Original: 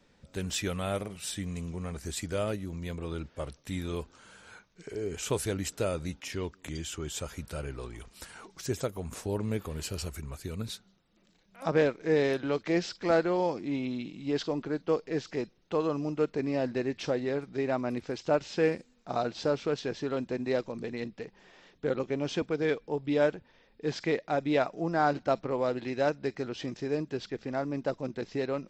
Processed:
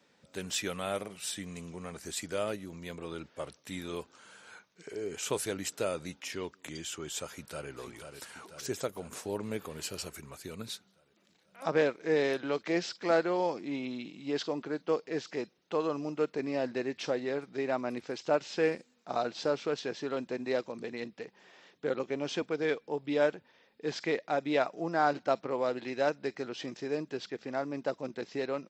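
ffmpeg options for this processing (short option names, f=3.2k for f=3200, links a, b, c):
-filter_complex "[0:a]asplit=2[a][b];[b]afade=t=in:st=7.27:d=0.01,afade=t=out:st=7.7:d=0.01,aecho=0:1:490|980|1470|1960|2450|2940|3430|3920|4410:0.421697|0.274103|0.178167|0.115808|0.0752755|0.048929|0.0318039|0.0206725|0.0134371[c];[a][c]amix=inputs=2:normalize=0,highpass=130,lowshelf=f=270:g=-7.5"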